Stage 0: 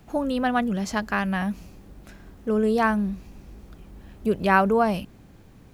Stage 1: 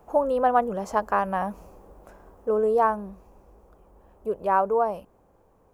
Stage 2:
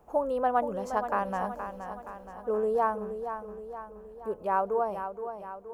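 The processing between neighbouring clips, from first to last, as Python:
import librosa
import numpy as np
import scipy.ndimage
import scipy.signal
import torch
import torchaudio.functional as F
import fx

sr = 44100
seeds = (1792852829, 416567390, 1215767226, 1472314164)

y1 = fx.graphic_eq(x, sr, hz=(125, 250, 500, 1000, 2000, 4000), db=(-6, -5, 11, 11, -6, -10))
y1 = fx.rider(y1, sr, range_db=10, speed_s=2.0)
y1 = y1 * 10.0 ** (-8.0 / 20.0)
y2 = fx.echo_feedback(y1, sr, ms=472, feedback_pct=53, wet_db=-9.0)
y2 = y2 * 10.0 ** (-5.5 / 20.0)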